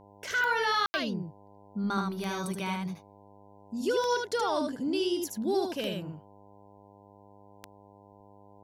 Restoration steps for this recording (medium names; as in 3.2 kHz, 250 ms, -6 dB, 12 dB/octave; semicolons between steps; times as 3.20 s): de-click; de-hum 101 Hz, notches 10; room tone fill 0.86–0.94 s; inverse comb 76 ms -3.5 dB